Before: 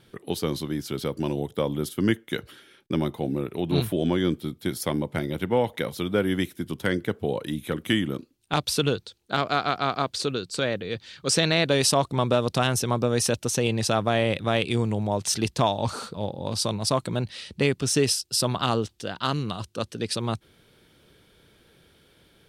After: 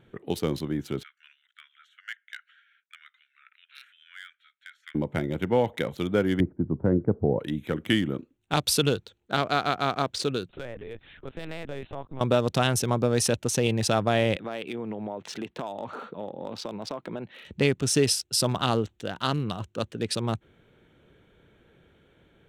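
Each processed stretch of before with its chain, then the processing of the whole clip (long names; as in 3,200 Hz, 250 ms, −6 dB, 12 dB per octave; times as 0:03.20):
0:01.03–0:04.95: de-essing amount 60% + Butterworth high-pass 1,400 Hz 72 dB per octave + head-to-tape spacing loss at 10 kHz 21 dB
0:06.40–0:07.39: low-pass filter 1,100 Hz 24 dB per octave + spectral tilt −2 dB per octave
0:08.57–0:09.00: high-shelf EQ 6,200 Hz +7 dB + upward compression, threshold −26 dBFS
0:10.49–0:12.21: downward compressor 2.5 to 1, threshold −37 dBFS + linear-prediction vocoder at 8 kHz pitch kept
0:14.36–0:17.45: three-way crossover with the lows and the highs turned down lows −21 dB, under 190 Hz, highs −21 dB, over 4,400 Hz + downward compressor 5 to 1, threshold −29 dBFS
whole clip: adaptive Wiener filter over 9 samples; parametric band 1,100 Hz −2.5 dB 0.38 octaves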